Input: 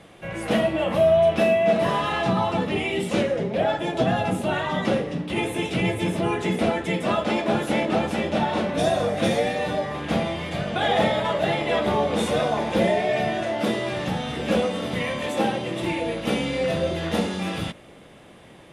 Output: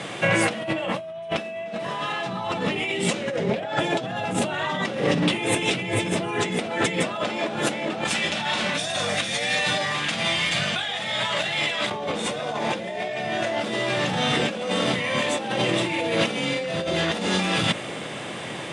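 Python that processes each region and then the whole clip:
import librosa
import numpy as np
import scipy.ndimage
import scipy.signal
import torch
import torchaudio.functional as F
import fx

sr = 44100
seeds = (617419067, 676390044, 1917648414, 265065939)

y = fx.chain(x, sr, fx.tone_stack(knobs='5-5-5'),
    fx.over_compress(threshold_db=-42.0, ratio=-1.0), at=(8.04, 11.91))
y = scipy.signal.sosfilt(scipy.signal.ellip(3, 1.0, 40, [110.0, 8700.0], 'bandpass', fs=sr, output='sos'), y)
y = fx.tilt_shelf(y, sr, db=-3.5, hz=1200.0)
y = fx.over_compress(y, sr, threshold_db=-35.0, ratio=-1.0)
y = F.gain(torch.from_numpy(y), 9.0).numpy()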